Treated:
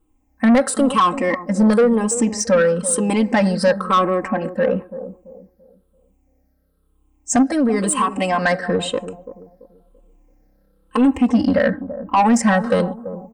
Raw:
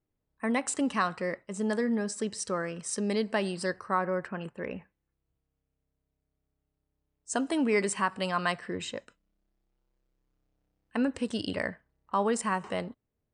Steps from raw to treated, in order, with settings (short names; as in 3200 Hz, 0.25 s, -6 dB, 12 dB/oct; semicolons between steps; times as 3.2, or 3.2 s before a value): moving spectral ripple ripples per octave 0.66, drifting -1 Hz, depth 14 dB; in parallel at +2 dB: limiter -18.5 dBFS, peak gain reduction 7.5 dB; on the sum: bell 3800 Hz -9 dB 1.9 oct; comb 3.8 ms, depth 93%; 7.42–8.43 compressor 6:1, threshold -19 dBFS, peak gain reduction 7.5 dB; soft clip -15 dBFS, distortion -12 dB; 11.15–12.17 bell 7700 Hz -13.5 dB 1.1 oct; on a send: analogue delay 0.336 s, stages 2048, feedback 31%, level -12.5 dB; on the sum: gain +6 dB